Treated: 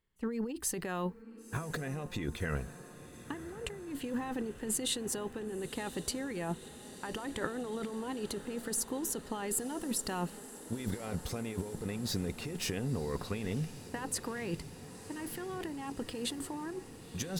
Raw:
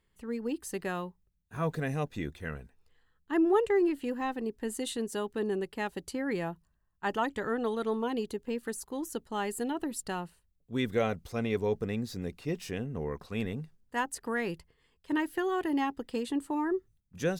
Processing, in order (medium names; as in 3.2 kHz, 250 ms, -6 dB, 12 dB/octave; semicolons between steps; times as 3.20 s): gate -54 dBFS, range -16 dB; compressor with a negative ratio -39 dBFS, ratio -1; echo that smears into a reverb 1006 ms, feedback 78%, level -15 dB; trim +1.5 dB